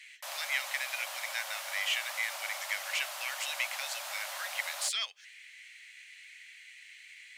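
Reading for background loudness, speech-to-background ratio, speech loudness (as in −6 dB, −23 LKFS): −39.0 LKFS, 4.0 dB, −35.0 LKFS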